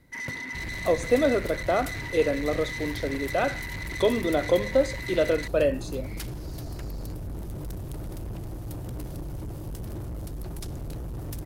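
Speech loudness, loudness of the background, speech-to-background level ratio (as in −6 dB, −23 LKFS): −26.5 LKFS, −35.0 LKFS, 8.5 dB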